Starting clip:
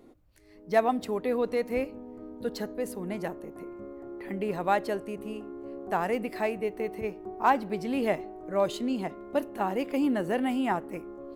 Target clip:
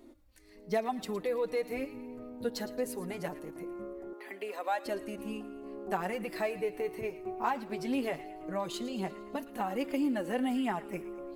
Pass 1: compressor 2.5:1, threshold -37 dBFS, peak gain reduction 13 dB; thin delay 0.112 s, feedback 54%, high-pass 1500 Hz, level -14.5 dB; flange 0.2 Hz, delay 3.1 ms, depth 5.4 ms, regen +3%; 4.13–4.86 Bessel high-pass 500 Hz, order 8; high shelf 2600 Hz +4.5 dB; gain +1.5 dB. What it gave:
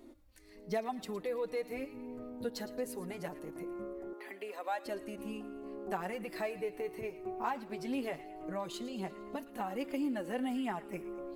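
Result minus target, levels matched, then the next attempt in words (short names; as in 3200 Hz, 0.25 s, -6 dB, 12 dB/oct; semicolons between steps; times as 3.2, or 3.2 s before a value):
compressor: peak gain reduction +4 dB
compressor 2.5:1, threshold -30 dBFS, peak gain reduction 9 dB; thin delay 0.112 s, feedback 54%, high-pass 1500 Hz, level -14.5 dB; flange 0.2 Hz, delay 3.1 ms, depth 5.4 ms, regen +3%; 4.13–4.86 Bessel high-pass 500 Hz, order 8; high shelf 2600 Hz +4.5 dB; gain +1.5 dB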